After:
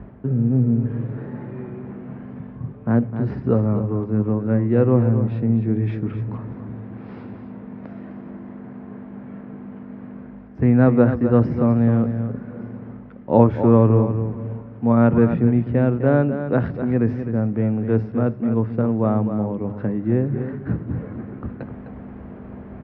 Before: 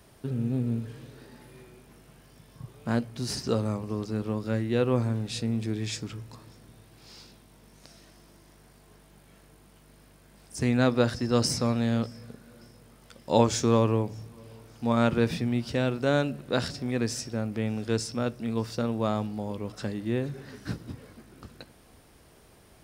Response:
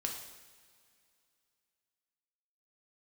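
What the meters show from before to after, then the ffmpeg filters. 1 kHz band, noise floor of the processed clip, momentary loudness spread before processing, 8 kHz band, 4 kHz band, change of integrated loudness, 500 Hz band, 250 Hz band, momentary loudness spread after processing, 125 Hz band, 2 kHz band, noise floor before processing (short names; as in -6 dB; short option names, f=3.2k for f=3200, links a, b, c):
+4.5 dB, -39 dBFS, 18 LU, under -40 dB, under -20 dB, +8.5 dB, +7.5 dB, +10.0 dB, 20 LU, +11.0 dB, +1.0 dB, -57 dBFS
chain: -filter_complex "[0:a]aeval=exprs='val(0)+0.00398*(sin(2*PI*50*n/s)+sin(2*PI*2*50*n/s)/2+sin(2*PI*3*50*n/s)/3+sin(2*PI*4*50*n/s)/4+sin(2*PI*5*50*n/s)/5)':c=same,lowpass=f=2k:w=0.5412,lowpass=f=2k:w=1.3066,areverse,acompressor=mode=upward:threshold=-29dB:ratio=2.5,areverse,highpass=59,bandreject=f=50:t=h:w=6,bandreject=f=100:t=h:w=6,bandreject=f=150:t=h:w=6,acrossover=split=220[a][b];[a]acontrast=88[c];[b]tiltshelf=f=970:g=4.5[d];[c][d]amix=inputs=2:normalize=0,aecho=1:1:256:0.335,volume=4dB"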